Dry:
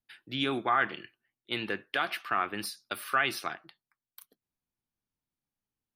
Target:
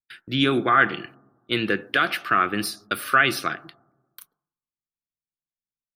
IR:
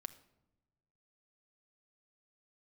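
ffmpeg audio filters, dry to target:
-filter_complex "[0:a]agate=range=-25dB:threshold=-54dB:ratio=16:detection=peak,asplit=2[a][b];[b]lowpass=f=1.5k:w=0.5412,lowpass=f=1.5k:w=1.3066[c];[1:a]atrim=start_sample=2205,lowpass=f=1.6k:w=0.5412,lowpass=f=1.6k:w=1.3066[d];[c][d]afir=irnorm=-1:irlink=0,volume=1.5dB[e];[a][e]amix=inputs=2:normalize=0,volume=8dB"

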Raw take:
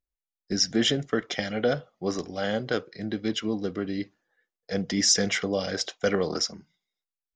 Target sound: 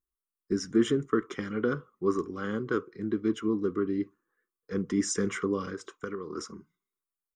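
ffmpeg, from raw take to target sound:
-filter_complex "[0:a]firequalizer=gain_entry='entry(170,0);entry(390,8);entry(660,-23);entry(1100,11);entry(1700,-5);entry(4600,-18);entry(8600,5)':delay=0.05:min_phase=1,asplit=3[a][b][c];[a]afade=t=out:st=5.69:d=0.02[d];[b]acompressor=threshold=-30dB:ratio=10,afade=t=in:st=5.69:d=0.02,afade=t=out:st=6.37:d=0.02[e];[c]afade=t=in:st=6.37:d=0.02[f];[d][e][f]amix=inputs=3:normalize=0,volume=-3dB"

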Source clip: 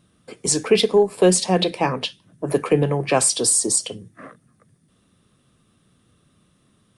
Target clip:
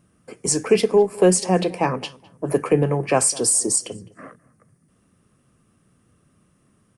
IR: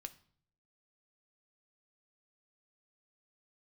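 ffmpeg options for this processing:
-filter_complex "[0:a]equalizer=f=3.7k:w=2.8:g=-14,asplit=2[a][b];[b]adelay=208,lowpass=f=3.4k:p=1,volume=-22dB,asplit=2[c][d];[d]adelay=208,lowpass=f=3.4k:p=1,volume=0.3[e];[c][e]amix=inputs=2:normalize=0[f];[a][f]amix=inputs=2:normalize=0"

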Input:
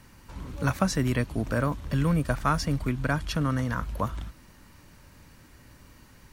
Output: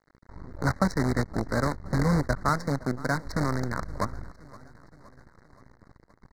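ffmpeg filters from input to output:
-filter_complex "[0:a]asettb=1/sr,asplit=3[a][b][c];[a]atrim=end=2.494[d];[b]atrim=start=2.49:end=3.24,asetpts=PTS-STARTPTS,afade=t=in:d=0.004:c=qsin,afade=t=out:st=0.746:d=0.004:c=qsin,highpass=f=130:w=0.5412,highpass=f=130:w=1.3066[e];[c]atrim=start=3.236[f];[d][e]acrossfade=d=0.004:c1=hsin:c2=qsin[g];[g][f]acrossfade=d=0.004:c1=qsin:c2=hsin,acrusher=bits=5:dc=4:mix=0:aa=0.000001,adynamicsmooth=sensitivity=2.5:basefreq=2.2k,asuperstop=centerf=2900:order=12:qfactor=1.6,aecho=1:1:520|1040|1560|2080:0.0944|0.0538|0.0307|0.0175"

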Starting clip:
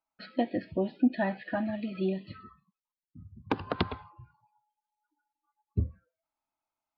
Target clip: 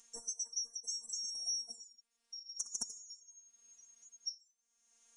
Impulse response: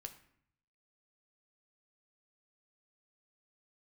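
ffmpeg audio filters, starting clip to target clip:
-af "afftfilt=real='real(if(lt(b,736),b+184*(1-2*mod(floor(b/184),2)),b),0)':imag='imag(if(lt(b,736),b+184*(1-2*mod(floor(b/184),2)),b),0)':win_size=2048:overlap=0.75,acompressor=threshold=-35dB:ratio=3,afftfilt=real='hypot(re,im)*cos(PI*b)':imag='0':win_size=1024:overlap=0.75,asetrate=59535,aresample=44100,acompressor=mode=upward:threshold=-42dB:ratio=2.5,aresample=22050,aresample=44100,volume=1dB"

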